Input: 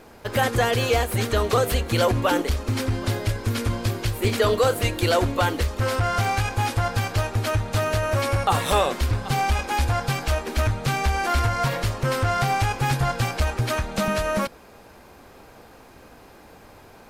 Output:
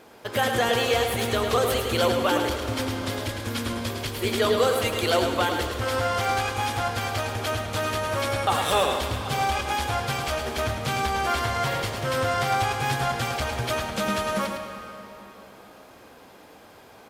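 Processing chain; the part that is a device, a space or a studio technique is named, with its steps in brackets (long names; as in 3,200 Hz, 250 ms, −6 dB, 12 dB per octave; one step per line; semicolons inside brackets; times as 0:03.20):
PA in a hall (high-pass filter 200 Hz 6 dB per octave; parametric band 3,300 Hz +5 dB 0.21 octaves; single-tap delay 107 ms −6.5 dB; convolution reverb RT60 3.2 s, pre-delay 100 ms, DRR 8 dB)
level −2 dB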